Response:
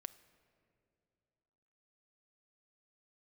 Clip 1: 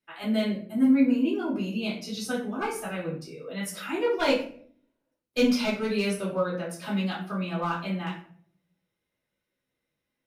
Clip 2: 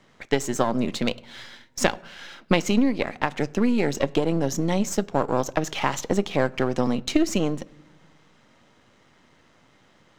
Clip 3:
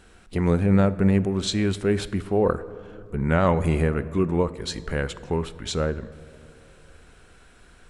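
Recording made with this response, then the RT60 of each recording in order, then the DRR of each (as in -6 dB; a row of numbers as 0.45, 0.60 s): 3; 0.55 s, not exponential, 2.6 s; -6.0, 17.0, 13.5 dB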